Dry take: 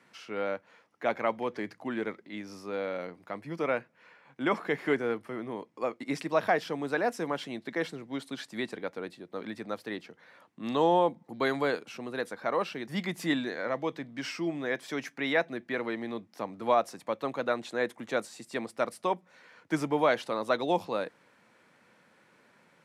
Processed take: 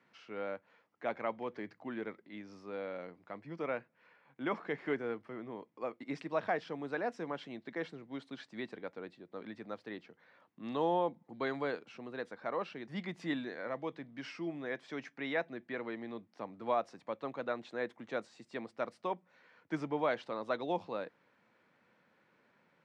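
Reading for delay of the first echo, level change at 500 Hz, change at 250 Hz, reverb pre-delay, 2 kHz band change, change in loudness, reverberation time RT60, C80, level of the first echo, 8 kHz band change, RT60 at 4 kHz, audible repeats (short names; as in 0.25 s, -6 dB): none, -7.5 dB, -7.0 dB, none, -8.0 dB, -7.5 dB, none, none, none, under -15 dB, none, none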